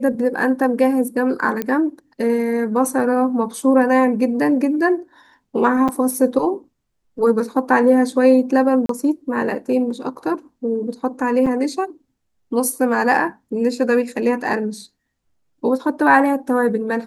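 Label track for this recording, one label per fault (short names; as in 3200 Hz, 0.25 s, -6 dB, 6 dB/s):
1.620000	1.620000	pop -9 dBFS
5.880000	5.890000	gap 6.4 ms
8.860000	8.890000	gap 33 ms
11.460000	11.470000	gap 5.6 ms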